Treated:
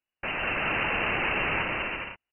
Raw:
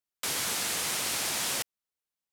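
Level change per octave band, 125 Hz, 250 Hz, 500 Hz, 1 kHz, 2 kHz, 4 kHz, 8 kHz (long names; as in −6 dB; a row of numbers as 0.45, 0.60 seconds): +10.0 dB, +8.5 dB, +8.5 dB, +8.0 dB, +10.0 dB, −4.0 dB, below −40 dB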